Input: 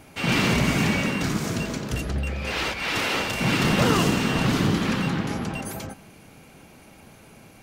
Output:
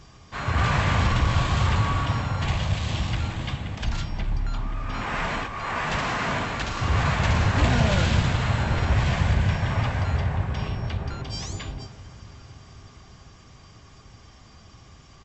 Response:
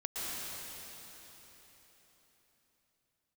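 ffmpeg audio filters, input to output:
-filter_complex "[0:a]equalizer=f=750:t=o:w=1.6:g=-7.5,bandreject=f=2.7k:w=8.6,asplit=2[a][b];[b]adelay=641.4,volume=-18dB,highshelf=f=4k:g=-14.4[c];[a][c]amix=inputs=2:normalize=0,asplit=2[d][e];[1:a]atrim=start_sample=2205,adelay=32[f];[e][f]afir=irnorm=-1:irlink=0,volume=-22.5dB[g];[d][g]amix=inputs=2:normalize=0,asetrate=22050,aresample=44100,volume=1.5dB"

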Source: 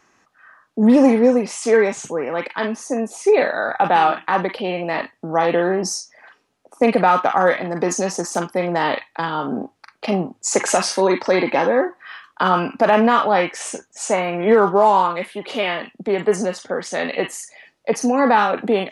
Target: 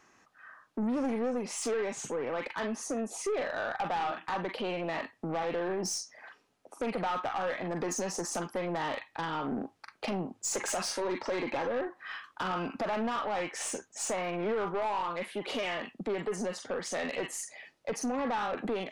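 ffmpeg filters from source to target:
-af "acompressor=threshold=-25dB:ratio=2.5,aeval=exprs='(tanh(14.1*val(0)+0.1)-tanh(0.1))/14.1':c=same,volume=-4dB"

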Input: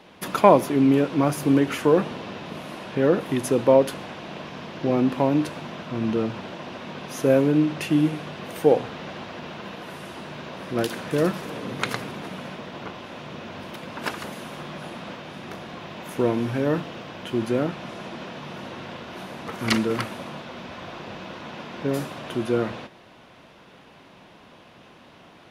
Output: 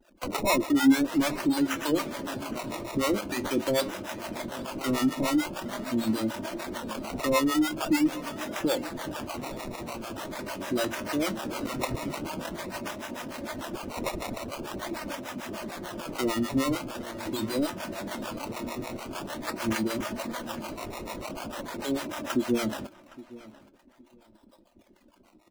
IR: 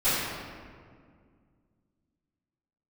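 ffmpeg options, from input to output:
-filter_complex "[0:a]anlmdn=0.1,bandreject=f=60:t=h:w=6,bandreject=f=120:t=h:w=6,bandreject=f=180:t=h:w=6,aecho=1:1:3.3:0.61,asplit=2[a][b];[b]acompressor=threshold=-27dB:ratio=12,volume=-1dB[c];[a][c]amix=inputs=2:normalize=0,acrusher=samples=19:mix=1:aa=0.000001:lfo=1:lforange=19:lforate=0.44,asoftclip=type=tanh:threshold=-14.5dB,acrossover=split=510[d][e];[d]aeval=exprs='val(0)*(1-1/2+1/2*cos(2*PI*6.7*n/s))':c=same[f];[e]aeval=exprs='val(0)*(1-1/2-1/2*cos(2*PI*6.7*n/s))':c=same[g];[f][g]amix=inputs=2:normalize=0,flanger=delay=1.3:depth=9.4:regen=71:speed=0.14:shape=triangular,asplit=2[h][i];[i]adelay=815,lowpass=f=3.7k:p=1,volume=-19dB,asplit=2[j][k];[k]adelay=815,lowpass=f=3.7k:p=1,volume=0.22[l];[j][l]amix=inputs=2:normalize=0[m];[h][m]amix=inputs=2:normalize=0,volume=3.5dB"

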